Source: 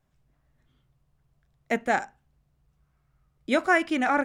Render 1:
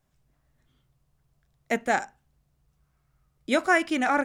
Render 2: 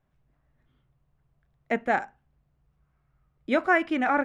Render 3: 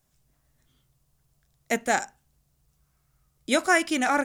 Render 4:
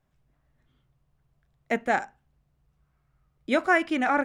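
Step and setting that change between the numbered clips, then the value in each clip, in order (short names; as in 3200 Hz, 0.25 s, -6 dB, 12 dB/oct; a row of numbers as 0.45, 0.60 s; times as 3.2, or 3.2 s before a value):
tone controls, treble: +5, -14, +15, -4 dB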